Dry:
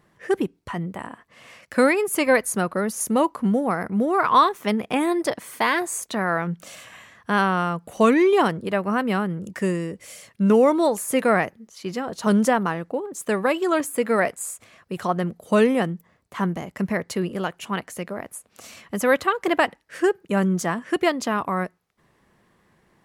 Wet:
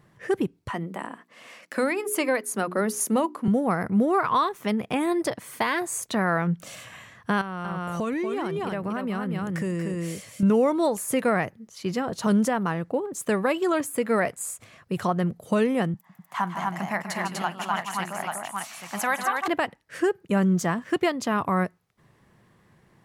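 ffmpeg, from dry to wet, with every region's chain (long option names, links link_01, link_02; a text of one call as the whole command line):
ffmpeg -i in.wav -filter_complex "[0:a]asettb=1/sr,asplit=3[link_01][link_02][link_03];[link_01]atrim=end=0.704[link_04];[link_02]atrim=start=0.7:end=3.48,asetpts=PTS-STARTPTS,afade=type=in:duration=0.004:curve=qsin,afade=type=out:start_time=2.776:duration=0.004:curve=qsin,highpass=frequency=210:width=0.5412,highpass=frequency=210:width=1.3066,bandreject=frequency=60:width_type=h:width=6,bandreject=frequency=120:width_type=h:width=6,bandreject=frequency=180:width_type=h:width=6,bandreject=frequency=240:width_type=h:width=6,bandreject=frequency=300:width_type=h:width=6,bandreject=frequency=360:width_type=h:width=6,bandreject=frequency=420:width_type=h:width=6[link_05];[link_03]atrim=start=3.476[link_06];[link_04][link_05]acrossfade=duration=0.004:curve1=hsin:curve2=qsin[link_07];[link_07][link_06]acrossfade=duration=0.004:curve1=qsin:curve2=hsin,asettb=1/sr,asplit=3[link_08][link_09][link_10];[link_08]atrim=end=7.414[link_11];[link_09]atrim=start=7.41:end=10.43,asetpts=PTS-STARTPTS,afade=type=in:duration=0.004:curve=qsin,afade=type=out:start_time=3.016:duration=0.004:curve=qsin,aecho=1:1:235:0.531,atrim=end_sample=133182,acompressor=threshold=-27dB:ratio=5:attack=3.2:release=140:knee=1:detection=peak[link_12];[link_10]atrim=start=10.426[link_13];[link_11][link_12]acrossfade=duration=0.004:curve1=hsin:curve2=qsin[link_14];[link_14][link_13]acrossfade=duration=0.004:curve1=qsin:curve2=hsin,asettb=1/sr,asplit=3[link_15][link_16][link_17];[link_15]atrim=end=15.944[link_18];[link_16]atrim=start=15.94:end=19.48,asetpts=PTS-STARTPTS,afade=type=in:duration=0.004:curve=qsin,afade=type=out:start_time=3.536:duration=0.004:curve=qsin,highpass=frequency=140:width=0.5412,highpass=frequency=140:width=1.3066,lowshelf=frequency=610:width_type=q:width=3:gain=-9,aecho=1:1:44|152|173|247|833:0.106|0.376|0.106|0.708|0.447,atrim=end_sample=156114[link_19];[link_17]atrim=start=19.476[link_20];[link_18][link_19]acrossfade=duration=0.004:curve1=hsin:curve2=qsin[link_21];[link_21][link_20]acrossfade=duration=0.004:curve1=qsin:curve2=hsin,asettb=1/sr,asplit=3[link_22][link_23][link_24];[link_22]atrim=end=20.374[link_25];[link_23]atrim=start=20.37:end=21.03,asetpts=PTS-STARTPTS,afade=type=in:duration=0.004:curve=qsin,afade=type=out:start_time=0.656:duration=0.004:curve=qsin,equalizer=frequency=10000:width=5:gain=-6,aeval=exprs='sgn(val(0))*max(abs(val(0))-0.0015,0)':channel_layout=same[link_26];[link_24]atrim=start=21.026[link_27];[link_25][link_26]acrossfade=duration=0.004:curve1=hsin:curve2=qsin[link_28];[link_28][link_27]acrossfade=duration=0.004:curve1=qsin:curve2=hsin,equalizer=frequency=120:width=1.5:gain=8.5,alimiter=limit=-13.5dB:level=0:latency=1:release=439" out.wav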